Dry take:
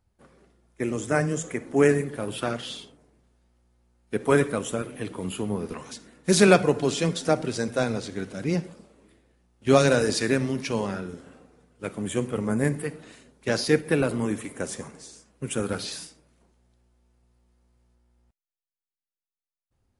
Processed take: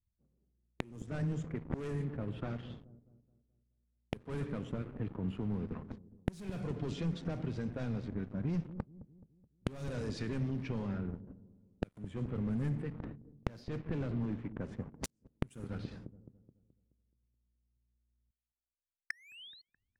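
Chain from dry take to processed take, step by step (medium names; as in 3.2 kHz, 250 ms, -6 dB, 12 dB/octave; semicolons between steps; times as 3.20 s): gate -45 dBFS, range -31 dB; 13.00–14.61 s: distance through air 120 m; 19.10–19.62 s: painted sound rise 1.7–4.4 kHz -33 dBFS; waveshaping leveller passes 5; inverted gate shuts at -15 dBFS, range -40 dB; level-controlled noise filter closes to 540 Hz, open at -43 dBFS; feedback echo behind a low-pass 213 ms, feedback 43%, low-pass 440 Hz, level -18 dB; compression 8:1, threshold -54 dBFS, peak gain reduction 27.5 dB; tone controls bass +14 dB, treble -1 dB; trim +13.5 dB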